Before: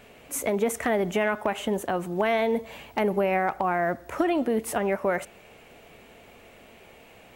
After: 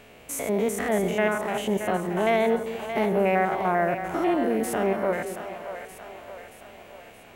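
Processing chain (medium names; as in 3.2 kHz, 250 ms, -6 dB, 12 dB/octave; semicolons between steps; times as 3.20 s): spectrogram pixelated in time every 100 ms; two-band feedback delay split 520 Hz, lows 202 ms, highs 625 ms, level -9 dB; trim +2.5 dB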